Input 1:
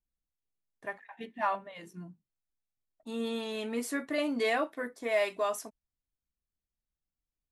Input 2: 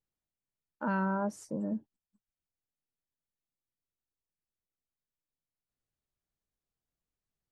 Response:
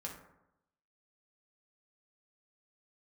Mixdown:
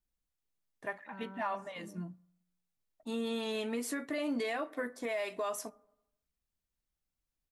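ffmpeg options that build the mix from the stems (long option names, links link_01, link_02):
-filter_complex "[0:a]volume=1.5dB,asplit=2[link_01][link_02];[link_02]volume=-17dB[link_03];[1:a]adelay=250,volume=-18dB[link_04];[2:a]atrim=start_sample=2205[link_05];[link_03][link_05]afir=irnorm=-1:irlink=0[link_06];[link_01][link_04][link_06]amix=inputs=3:normalize=0,alimiter=level_in=3dB:limit=-24dB:level=0:latency=1:release=168,volume=-3dB"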